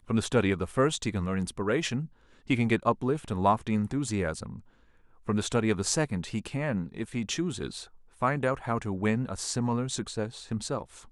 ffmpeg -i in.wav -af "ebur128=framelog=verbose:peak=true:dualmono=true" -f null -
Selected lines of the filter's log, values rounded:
Integrated loudness:
  I:         -26.6 LUFS
  Threshold: -37.0 LUFS
Loudness range:
  LRA:         2.7 LU
  Threshold: -47.1 LUFS
  LRA low:   -28.2 LUFS
  LRA high:  -25.5 LUFS
True peak:
  Peak:       -9.2 dBFS